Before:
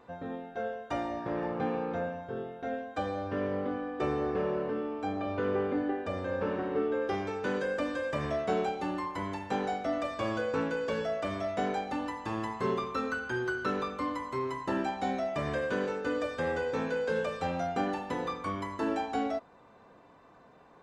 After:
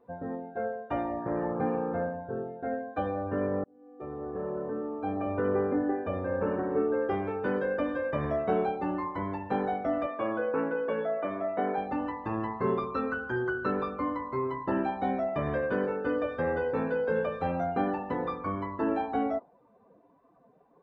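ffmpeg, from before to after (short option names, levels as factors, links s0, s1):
-filter_complex "[0:a]asettb=1/sr,asplit=3[s0][s1][s2];[s0]atrim=end=10.064[s3];[s1]atrim=start=10.06:end=11.78,asetpts=PTS-STARTPTS,afade=t=in:d=0.004:c=qsin,afade=t=out:st=1.716:d=0.004:c=qsin,highpass=230,lowpass=3200[s4];[s2]atrim=start=11.776[s5];[s3][s4]acrossfade=d=0.004:c1=hsin:c2=qsin[s6];[s6][s5]acrossfade=d=0.004:c1=qsin:c2=hsin,asplit=2[s7][s8];[s7]atrim=end=3.64,asetpts=PTS-STARTPTS,afade=t=out:st=3.636:d=0.004:c=hsin[s9];[s8]atrim=start=3.64,asetpts=PTS-STARTPTS,afade=t=in:d=1.62[s10];[s9][s10]concat=n=2:v=0:a=1,lowpass=f=1600:p=1,afftdn=nr=16:nf=-49,volume=1.41"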